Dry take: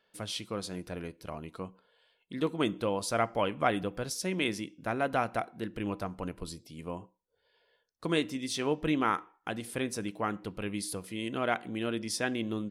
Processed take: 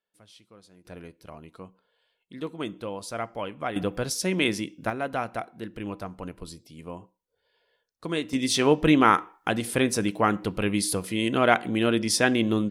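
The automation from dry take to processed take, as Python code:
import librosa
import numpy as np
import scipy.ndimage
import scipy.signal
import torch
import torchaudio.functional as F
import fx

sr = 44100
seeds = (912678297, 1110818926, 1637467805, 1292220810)

y = fx.gain(x, sr, db=fx.steps((0.0, -16.5), (0.85, -3.5), (3.76, 6.5), (4.9, 0.0), (8.33, 10.0)))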